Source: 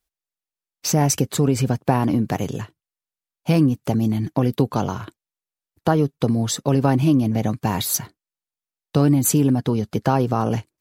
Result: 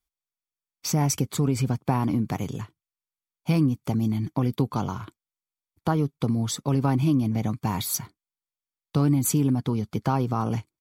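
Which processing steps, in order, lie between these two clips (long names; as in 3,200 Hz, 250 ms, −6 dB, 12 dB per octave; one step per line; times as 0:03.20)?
comb filter 0.9 ms, depth 38%
level −6 dB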